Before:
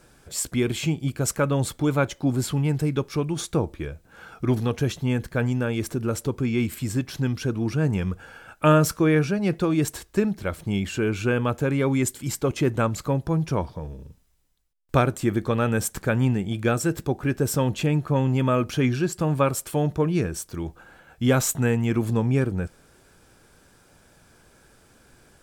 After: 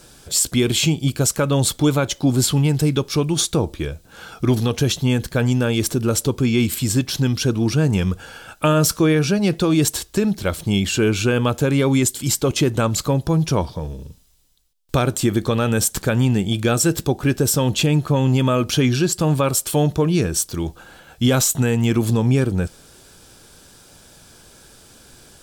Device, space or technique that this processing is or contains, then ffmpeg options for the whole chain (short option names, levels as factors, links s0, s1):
over-bright horn tweeter: -af "highshelf=f=2700:t=q:w=1.5:g=6,alimiter=limit=0.2:level=0:latency=1:release=106,volume=2.11"